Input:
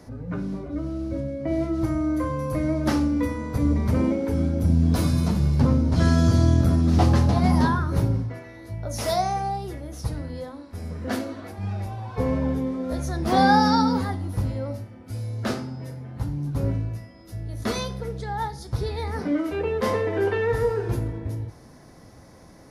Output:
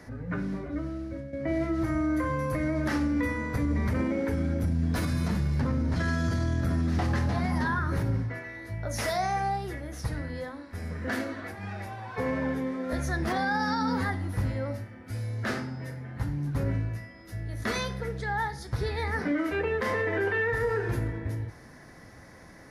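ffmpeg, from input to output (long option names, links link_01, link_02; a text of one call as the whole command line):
ffmpeg -i in.wav -filter_complex "[0:a]asettb=1/sr,asplit=3[link_01][link_02][link_03];[link_01]atrim=end=11.554[link_04];[link_02]atrim=start=11.55:end=12.93,asetpts=PTS-STARTPTS,afade=type=in:duration=0.004:curve=qsin,afade=type=out:start_time=1.376:duration=0.004:curve=qsin,highpass=frequency=220:poles=1[link_05];[link_03]atrim=start=12.926[link_06];[link_04][link_05]acrossfade=duration=0.004:curve1=hsin:curve2=qsin[link_07];[link_07][link_06]acrossfade=duration=0.004:curve1=qsin:curve2=hsin,asplit=2[link_08][link_09];[link_08]atrim=end=1.33,asetpts=PTS-STARTPTS,afade=type=out:start_time=0.67:duration=0.66:silence=0.316228[link_10];[link_09]atrim=start=1.33,asetpts=PTS-STARTPTS,afade=type=in:duration=0.004:curve=hsin:silence=0.316228[link_11];[link_10][link_11]concat=n=2:v=0:a=1,equalizer=frequency=1800:width=1.8:gain=11.5,alimiter=limit=-17dB:level=0:latency=1:release=67,volume=-2.5dB" out.wav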